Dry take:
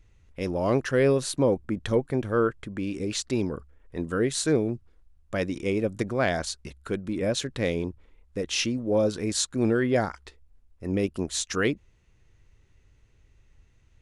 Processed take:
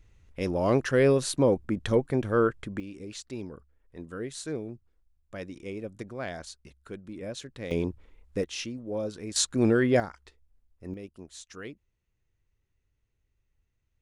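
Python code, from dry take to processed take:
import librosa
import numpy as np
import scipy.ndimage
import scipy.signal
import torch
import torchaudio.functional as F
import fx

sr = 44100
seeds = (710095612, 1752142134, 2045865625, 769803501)

y = fx.gain(x, sr, db=fx.steps((0.0, 0.0), (2.8, -11.0), (7.71, 1.0), (8.44, -9.0), (9.36, 1.0), (10.0, -8.0), (10.94, -16.5)))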